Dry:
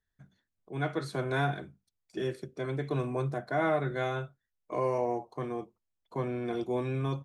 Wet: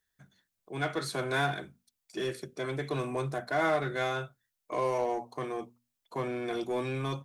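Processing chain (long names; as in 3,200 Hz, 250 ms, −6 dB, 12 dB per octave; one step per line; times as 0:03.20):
spectral tilt +2 dB per octave
mains-hum notches 60/120/180/240 Hz
in parallel at −12 dB: wave folding −34.5 dBFS
on the sum: level +1.5 dB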